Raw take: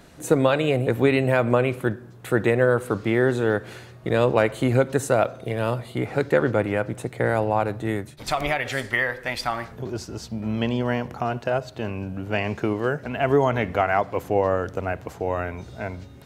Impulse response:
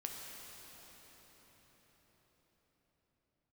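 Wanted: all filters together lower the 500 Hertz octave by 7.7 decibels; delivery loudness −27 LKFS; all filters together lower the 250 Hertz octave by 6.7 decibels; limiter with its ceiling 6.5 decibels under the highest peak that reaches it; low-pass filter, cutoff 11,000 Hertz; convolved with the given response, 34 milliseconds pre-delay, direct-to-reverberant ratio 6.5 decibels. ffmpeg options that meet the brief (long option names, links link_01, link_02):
-filter_complex "[0:a]lowpass=11000,equalizer=frequency=250:width_type=o:gain=-6,equalizer=frequency=500:width_type=o:gain=-8,alimiter=limit=-14.5dB:level=0:latency=1,asplit=2[link_01][link_02];[1:a]atrim=start_sample=2205,adelay=34[link_03];[link_02][link_03]afir=irnorm=-1:irlink=0,volume=-6dB[link_04];[link_01][link_04]amix=inputs=2:normalize=0,volume=1.5dB"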